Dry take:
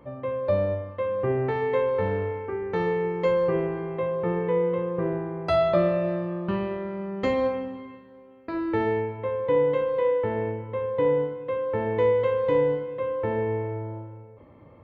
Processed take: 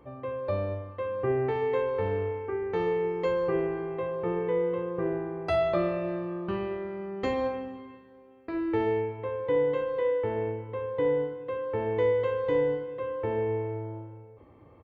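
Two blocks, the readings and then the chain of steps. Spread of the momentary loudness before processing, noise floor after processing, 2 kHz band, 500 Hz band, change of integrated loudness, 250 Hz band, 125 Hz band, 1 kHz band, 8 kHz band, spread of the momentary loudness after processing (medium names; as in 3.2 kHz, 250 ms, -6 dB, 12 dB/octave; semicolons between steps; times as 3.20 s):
9 LU, -54 dBFS, -3.5 dB, -3.5 dB, -3.5 dB, -3.5 dB, -5.0 dB, -4.0 dB, no reading, 9 LU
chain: comb 2.6 ms, depth 38%; trim -3.5 dB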